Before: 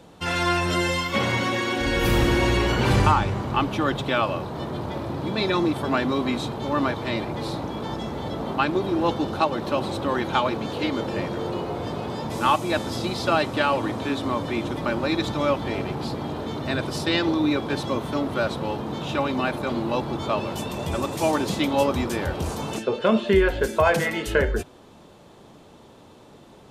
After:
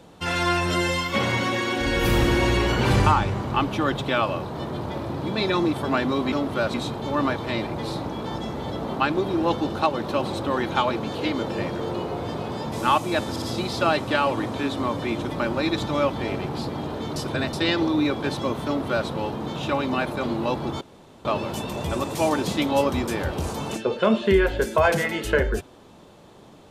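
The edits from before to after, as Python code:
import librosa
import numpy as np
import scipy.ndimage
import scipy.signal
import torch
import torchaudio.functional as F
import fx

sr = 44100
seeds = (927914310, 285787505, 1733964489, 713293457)

y = fx.edit(x, sr, fx.stutter(start_s=12.88, slice_s=0.06, count=3),
    fx.reverse_span(start_s=16.62, length_s=0.37),
    fx.duplicate(start_s=18.12, length_s=0.42, to_s=6.32),
    fx.insert_room_tone(at_s=20.27, length_s=0.44), tone=tone)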